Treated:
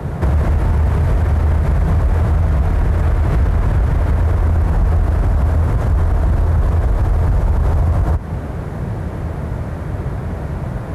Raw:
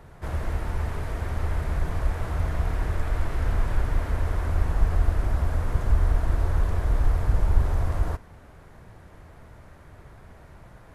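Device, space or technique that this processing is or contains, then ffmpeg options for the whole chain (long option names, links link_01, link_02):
mastering chain: -filter_complex "[0:a]highpass=frequency=43:width=0.5412,highpass=frequency=43:width=1.3066,equalizer=frequency=150:width_type=o:width=0.77:gain=3.5,acrossover=split=170|500[link_01][link_02][link_03];[link_01]acompressor=threshold=-28dB:ratio=4[link_04];[link_02]acompressor=threshold=-47dB:ratio=4[link_05];[link_03]acompressor=threshold=-40dB:ratio=4[link_06];[link_04][link_05][link_06]amix=inputs=3:normalize=0,acompressor=threshold=-35dB:ratio=2,asoftclip=type=tanh:threshold=-27dB,tiltshelf=frequency=930:gain=5.5,alimiter=level_in=28dB:limit=-1dB:release=50:level=0:latency=1,volume=-7.5dB"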